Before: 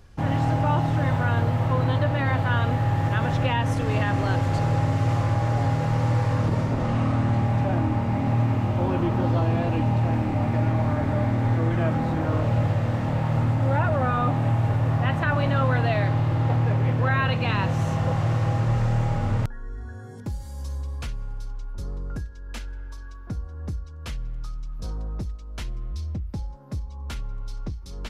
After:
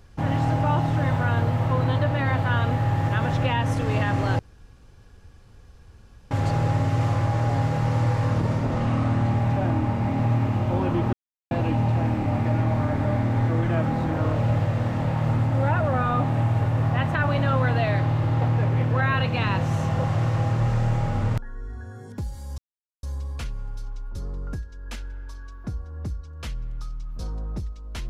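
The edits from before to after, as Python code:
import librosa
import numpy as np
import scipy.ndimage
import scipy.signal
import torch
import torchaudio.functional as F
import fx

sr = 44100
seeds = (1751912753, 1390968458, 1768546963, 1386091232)

y = fx.edit(x, sr, fx.insert_room_tone(at_s=4.39, length_s=1.92),
    fx.silence(start_s=9.21, length_s=0.38),
    fx.insert_silence(at_s=20.66, length_s=0.45), tone=tone)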